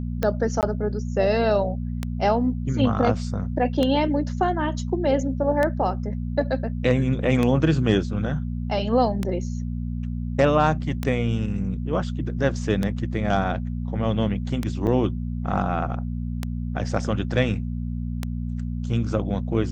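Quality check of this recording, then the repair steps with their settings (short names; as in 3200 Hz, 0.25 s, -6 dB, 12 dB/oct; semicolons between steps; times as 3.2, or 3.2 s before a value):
hum 60 Hz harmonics 4 -28 dBFS
tick 33 1/3 rpm -11 dBFS
0.61–0.63 gap 18 ms
14.87 gap 4.7 ms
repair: de-click; de-hum 60 Hz, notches 4; interpolate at 0.61, 18 ms; interpolate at 14.87, 4.7 ms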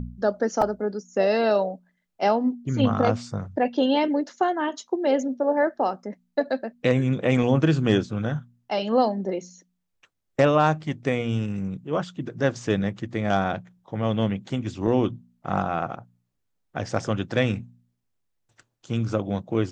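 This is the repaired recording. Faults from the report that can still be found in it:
none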